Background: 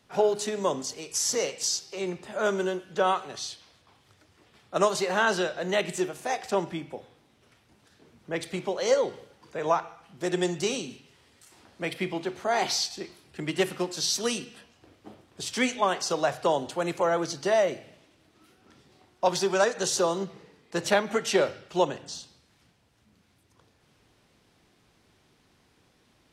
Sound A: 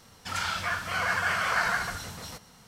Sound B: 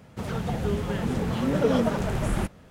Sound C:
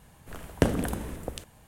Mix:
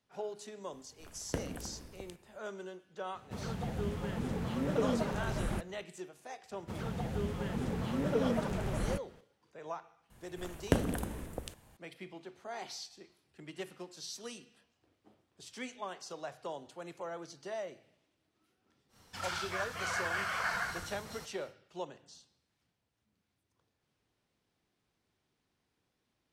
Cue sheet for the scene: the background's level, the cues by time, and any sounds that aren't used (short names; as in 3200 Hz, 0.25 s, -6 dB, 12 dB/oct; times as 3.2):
background -17 dB
0.72 add C -13.5 dB
3.14 add B -9 dB
6.51 add B -8.5 dB
10.1 add C -5.5 dB
18.88 add A -8 dB, fades 0.10 s